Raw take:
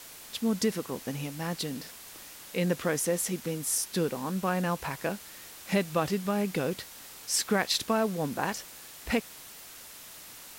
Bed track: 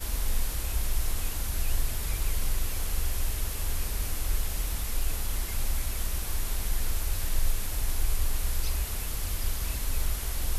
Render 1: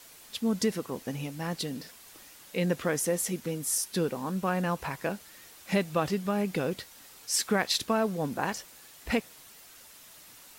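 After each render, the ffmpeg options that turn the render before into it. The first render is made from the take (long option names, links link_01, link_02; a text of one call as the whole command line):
ffmpeg -i in.wav -af "afftdn=noise_reduction=6:noise_floor=-48" out.wav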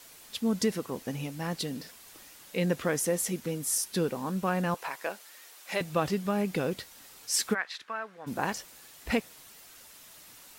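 ffmpeg -i in.wav -filter_complex "[0:a]asettb=1/sr,asplit=3[link_01][link_02][link_03];[link_01]atrim=end=4.744[link_04];[link_02]atrim=start=4.74:end=5.81,asetpts=PTS-STARTPTS,afade=type=in:duration=0.004:curve=qsin,afade=type=out:start_time=1.066:duration=0.004:curve=qsin,highpass=510[link_05];[link_03]atrim=start=5.806[link_06];[link_04][link_05]acrossfade=duration=0.004:curve1=hsin:curve2=qsin[link_07];[link_07][link_06]acrossfade=duration=0.004:curve1=qsin:curve2=hsin,asplit=3[link_08][link_09][link_10];[link_08]afade=type=out:start_time=7.53:duration=0.02[link_11];[link_09]bandpass=frequency=1600:width_type=q:width=2,afade=type=in:start_time=7.53:duration=0.02,afade=type=out:start_time=8.26:duration=0.02[link_12];[link_10]afade=type=in:start_time=8.26:duration=0.02[link_13];[link_11][link_12][link_13]amix=inputs=3:normalize=0" out.wav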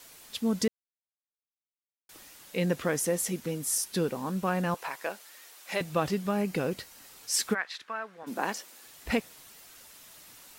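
ffmpeg -i in.wav -filter_complex "[0:a]asettb=1/sr,asplit=3[link_01][link_02][link_03];[link_01]atrim=end=6.354[link_04];[link_02]atrim=start=6.35:end=7.07,asetpts=PTS-STARTPTS,afade=type=in:duration=0.004:curve=qsin,afade=type=out:start_time=0.716:duration=0.004:curve=qsin,bandreject=frequency=3500:width=12[link_05];[link_03]atrim=start=7.066[link_06];[link_04][link_05]acrossfade=duration=0.004:curve1=hsin:curve2=qsin[link_07];[link_07][link_06]acrossfade=duration=0.004:curve1=qsin:curve2=hsin,asettb=1/sr,asplit=3[link_08][link_09][link_10];[link_08]atrim=end=8.234[link_11];[link_09]atrim=start=8.23:end=8.86,asetpts=PTS-STARTPTS,afade=type=in:duration=0.004:curve=qsin,afade=type=out:start_time=0.626:duration=0.004:curve=qsin,highpass=frequency=210:width=0.5412,highpass=frequency=210:width=1.3066[link_12];[link_10]atrim=start=8.856[link_13];[link_11][link_12]acrossfade=duration=0.004:curve1=hsin:curve2=qsin[link_14];[link_14][link_13]acrossfade=duration=0.004:curve1=qsin:curve2=hsin,asplit=3[link_15][link_16][link_17];[link_15]atrim=end=0.68,asetpts=PTS-STARTPTS,afade=type=out:start_time=0.676:duration=0.004:curve=hsin[link_18];[link_16]atrim=start=0.68:end=2.09,asetpts=PTS-STARTPTS,volume=0[link_19];[link_17]atrim=start=2.09,asetpts=PTS-STARTPTS,afade=type=in:duration=0.004:curve=hsin[link_20];[link_18][link_19][link_20]concat=n=3:v=0:a=1" out.wav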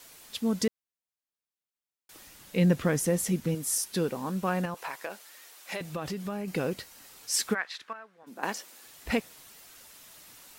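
ffmpeg -i in.wav -filter_complex "[0:a]asettb=1/sr,asplit=3[link_01][link_02][link_03];[link_01]atrim=end=2.274[link_04];[link_02]atrim=start=2.27:end=3.55,asetpts=PTS-STARTPTS,afade=type=in:duration=0.004:curve=qsin,afade=type=out:start_time=1.276:duration=0.004:curve=qsin,bass=frequency=250:gain=9,treble=frequency=4000:gain=-1[link_05];[link_03]atrim=start=3.546[link_06];[link_04][link_05]acrossfade=duration=0.004:curve1=hsin:curve2=qsin[link_07];[link_07][link_06]acrossfade=duration=0.004:curve1=qsin:curve2=hsin,asettb=1/sr,asplit=3[link_08][link_09][link_10];[link_08]atrim=end=4.654[link_11];[link_09]atrim=start=4.65:end=6.48,asetpts=PTS-STARTPTS,afade=type=in:duration=0.004:curve=qsin,afade=type=out:start_time=1.826:duration=0.004:curve=qsin,acompressor=threshold=-30dB:ratio=6:attack=3.2:release=140:knee=1:detection=peak[link_12];[link_10]atrim=start=6.476[link_13];[link_11][link_12]acrossfade=duration=0.004:curve1=hsin:curve2=qsin[link_14];[link_14][link_13]acrossfade=duration=0.004:curve1=qsin:curve2=hsin,asplit=3[link_15][link_16][link_17];[link_15]atrim=end=7.932[link_18];[link_16]atrim=start=7.928:end=8.432,asetpts=PTS-STARTPTS,volume=-10dB[link_19];[link_17]atrim=start=8.428[link_20];[link_18][link_19]acrossfade=duration=0.004:curve1=hsin:curve2=hsin[link_21];[link_21][link_20]acrossfade=duration=0.004:curve1=hsin:curve2=hsin" out.wav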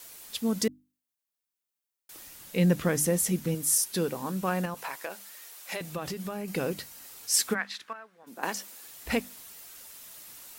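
ffmpeg -i in.wav -af "highshelf=frequency=7900:gain=8,bandreject=frequency=50:width_type=h:width=6,bandreject=frequency=100:width_type=h:width=6,bandreject=frequency=150:width_type=h:width=6,bandreject=frequency=200:width_type=h:width=6,bandreject=frequency=250:width_type=h:width=6,bandreject=frequency=300:width_type=h:width=6" out.wav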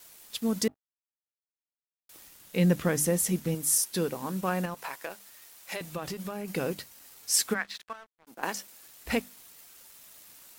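ffmpeg -i in.wav -af "aeval=exprs='sgn(val(0))*max(abs(val(0))-0.00266,0)':channel_layout=same" out.wav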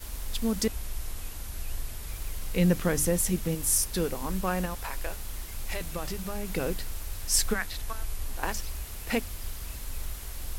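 ffmpeg -i in.wav -i bed.wav -filter_complex "[1:a]volume=-7dB[link_01];[0:a][link_01]amix=inputs=2:normalize=0" out.wav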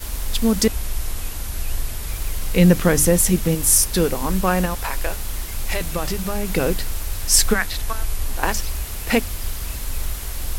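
ffmpeg -i in.wav -af "volume=10dB,alimiter=limit=-1dB:level=0:latency=1" out.wav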